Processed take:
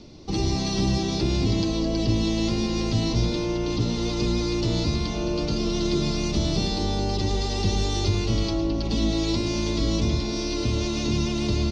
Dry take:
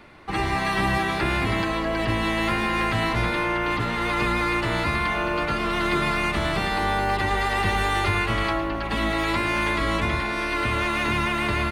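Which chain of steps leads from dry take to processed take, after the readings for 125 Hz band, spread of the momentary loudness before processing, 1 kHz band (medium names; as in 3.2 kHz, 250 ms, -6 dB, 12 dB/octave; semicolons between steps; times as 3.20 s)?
+4.0 dB, 2 LU, -12.0 dB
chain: in parallel at +2 dB: peak limiter -22 dBFS, peak gain reduction 10.5 dB; on the sum: FFT filter 290 Hz 0 dB, 490 Hz -5 dB, 1.7 kHz -26 dB, 5.7 kHz +10 dB, 11 kHz -28 dB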